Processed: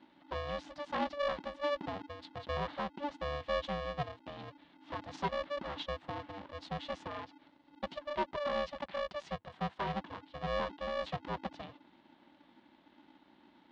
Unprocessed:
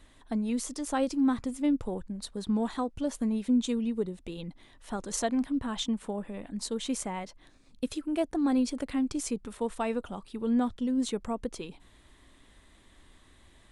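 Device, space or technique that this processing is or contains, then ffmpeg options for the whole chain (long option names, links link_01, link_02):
ring modulator pedal into a guitar cabinet: -filter_complex "[0:a]asettb=1/sr,asplit=3[link_01][link_02][link_03];[link_01]atrim=end=8.354[link_04];[link_02]atrim=start=8.35:end=9.94,asetpts=PTS-STARTPTS,afade=type=in:duration=0.004:curve=qsin,afade=type=out:start_time=1.586:duration=0.004:curve=qsin,highpass=94[link_05];[link_03]atrim=start=9.936[link_06];[link_04][link_05]acrossfade=duration=0.004:curve1=hsin:curve2=qsin[link_07];[link_07][link_06]acrossfade=duration=0.004:curve1=qsin:curve2=hsin,aeval=exprs='val(0)*sgn(sin(2*PI*290*n/s))':channel_layout=same,highpass=96,equalizer=frequency=100:width_type=q:width=4:gain=-8,equalizer=frequency=180:width_type=q:width=4:gain=4,equalizer=frequency=460:width_type=q:width=4:gain=-7,equalizer=frequency=940:width_type=q:width=4:gain=4,equalizer=frequency=1400:width_type=q:width=4:gain=-4,equalizer=frequency=2400:width_type=q:width=4:gain=-5,lowpass=frequency=3700:width=0.5412,lowpass=frequency=3700:width=1.3066,volume=-5dB"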